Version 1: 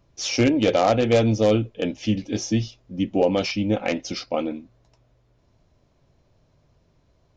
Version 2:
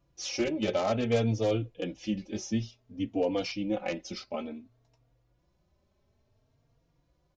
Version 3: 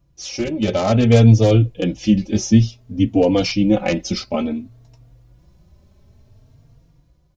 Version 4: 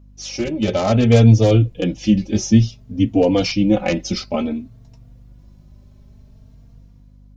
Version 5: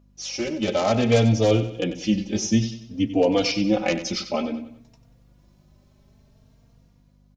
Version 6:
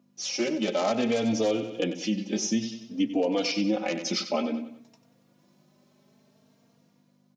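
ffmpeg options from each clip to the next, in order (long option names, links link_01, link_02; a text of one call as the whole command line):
ffmpeg -i in.wav -filter_complex "[0:a]asplit=2[link_01][link_02];[link_02]adelay=3.7,afreqshift=0.57[link_03];[link_01][link_03]amix=inputs=2:normalize=1,volume=-6dB" out.wav
ffmpeg -i in.wav -af "bass=frequency=250:gain=10,treble=frequency=4000:gain=4,dynaudnorm=framelen=160:gausssize=9:maxgain=10dB,volume=2dB" out.wav
ffmpeg -i in.wav -af "aeval=exprs='val(0)+0.00562*(sin(2*PI*50*n/s)+sin(2*PI*2*50*n/s)/2+sin(2*PI*3*50*n/s)/3+sin(2*PI*4*50*n/s)/4+sin(2*PI*5*50*n/s)/5)':channel_layout=same" out.wav
ffmpeg -i in.wav -filter_complex "[0:a]lowshelf=frequency=210:gain=-11.5,asplit=2[link_01][link_02];[link_02]aecho=0:1:94|188|282|376:0.251|0.103|0.0422|0.0173[link_03];[link_01][link_03]amix=inputs=2:normalize=0,volume=-1.5dB" out.wav
ffmpeg -i in.wav -af "highpass=frequency=180:width=0.5412,highpass=frequency=180:width=1.3066,alimiter=limit=-16.5dB:level=0:latency=1:release=249" out.wav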